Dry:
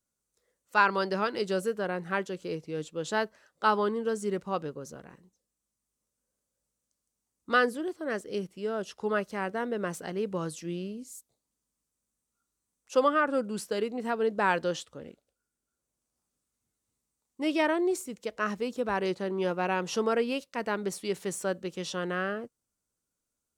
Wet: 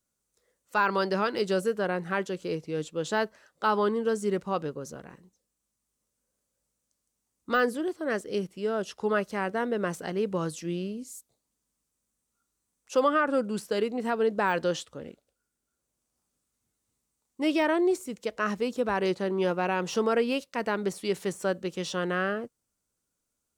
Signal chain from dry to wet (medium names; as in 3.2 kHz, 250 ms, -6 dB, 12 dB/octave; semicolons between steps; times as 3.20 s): de-esser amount 90%; in parallel at +2 dB: peak limiter -20.5 dBFS, peak gain reduction 7.5 dB; on the sum: trim -4 dB